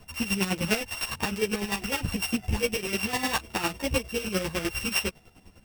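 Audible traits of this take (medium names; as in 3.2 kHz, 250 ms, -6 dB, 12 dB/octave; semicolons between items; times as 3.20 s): a buzz of ramps at a fixed pitch in blocks of 16 samples; chopped level 9.9 Hz, depth 65%, duty 30%; a shimmering, thickened sound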